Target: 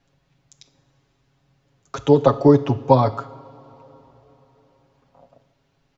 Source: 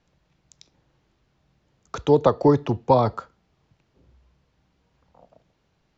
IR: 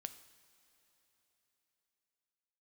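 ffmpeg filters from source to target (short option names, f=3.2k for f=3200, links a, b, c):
-filter_complex "[0:a]aecho=1:1:7.3:0.76,asplit=2[a][b];[1:a]atrim=start_sample=2205[c];[b][c]afir=irnorm=-1:irlink=0,volume=10.5dB[d];[a][d]amix=inputs=2:normalize=0,volume=-9.5dB"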